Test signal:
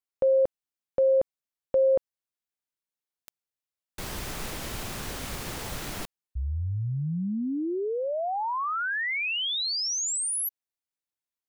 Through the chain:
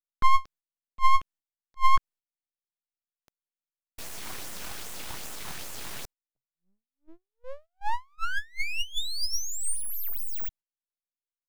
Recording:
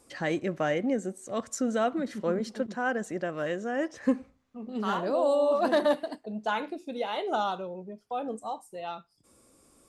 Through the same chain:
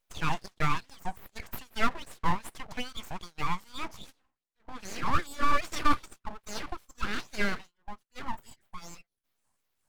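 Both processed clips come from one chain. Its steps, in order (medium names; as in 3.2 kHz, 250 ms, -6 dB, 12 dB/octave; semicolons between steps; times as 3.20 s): LFO high-pass sine 2.5 Hz 390–3700 Hz; full-wave rectifier; gate -46 dBFS, range -15 dB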